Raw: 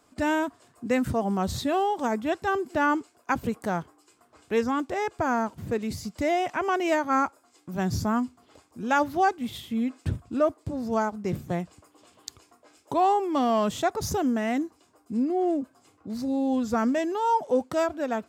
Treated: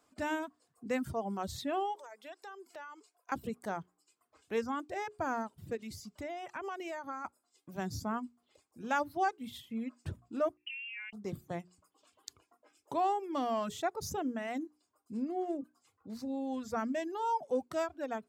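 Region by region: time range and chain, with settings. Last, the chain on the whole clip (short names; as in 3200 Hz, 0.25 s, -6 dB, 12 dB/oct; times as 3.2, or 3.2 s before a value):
1.95–3.32 HPF 420 Hz 24 dB/oct + dynamic EQ 4700 Hz, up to +4 dB, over -46 dBFS, Q 0.74 + compressor 4:1, threshold -37 dBFS
5.75–7.25 bell 190 Hz -3.5 dB 0.9 oct + compressor 10:1, threshold -27 dBFS
10.57–11.13 inverted band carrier 3000 Hz + level quantiser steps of 17 dB
whole clip: notches 60/120/180/240/300/360/420 Hz; reverb removal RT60 1 s; low shelf 140 Hz -5 dB; gain -8 dB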